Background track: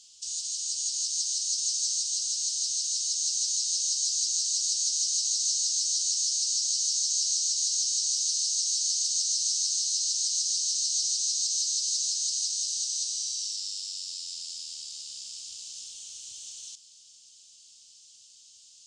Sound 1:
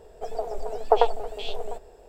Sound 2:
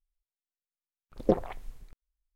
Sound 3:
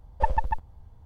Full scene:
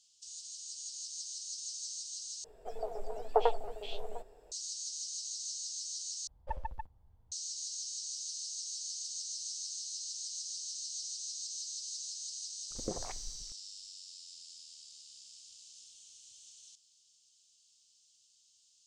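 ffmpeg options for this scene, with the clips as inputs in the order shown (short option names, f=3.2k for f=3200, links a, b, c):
-filter_complex "[0:a]volume=-13.5dB[a];[1:a]flanger=delay=6.3:depth=3.9:regen=-40:speed=1:shape=triangular[b];[2:a]acompressor=threshold=-28dB:ratio=6:attack=3.2:release=140:knee=1:detection=peak[c];[a]asplit=3[d][e][f];[d]atrim=end=2.444[g];[b]atrim=end=2.08,asetpts=PTS-STARTPTS,volume=-5dB[h];[e]atrim=start=4.516:end=6.274[i];[3:a]atrim=end=1.05,asetpts=PTS-STARTPTS,volume=-15dB[j];[f]atrim=start=7.316[k];[c]atrim=end=2.35,asetpts=PTS-STARTPTS,volume=-4dB,afade=t=in:d=0.004:c=hsin,afade=t=out:st=2.346:d=0.004:c=hsin,adelay=11590[l];[g][h]acrossfade=d=0.004:c1=hsin:c2=hsin[m];[m][i]acrossfade=d=0.004:c1=hsin:c2=hsin[n];[n][j]acrossfade=d=0.004:c1=hsin:c2=hsin[o];[o][k]acrossfade=d=0.004:c1=hsin:c2=hsin[p];[p][l]amix=inputs=2:normalize=0"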